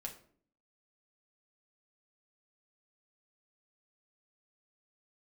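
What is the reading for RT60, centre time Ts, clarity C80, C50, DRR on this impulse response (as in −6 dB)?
0.55 s, 13 ms, 15.0 dB, 11.0 dB, 0.5 dB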